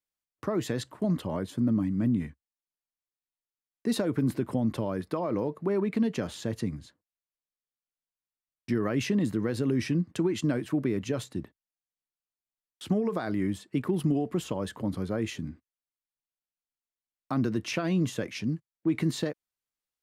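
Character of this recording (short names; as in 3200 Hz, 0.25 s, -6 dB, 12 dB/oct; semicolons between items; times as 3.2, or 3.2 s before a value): noise floor -96 dBFS; spectral tilt -6.5 dB/oct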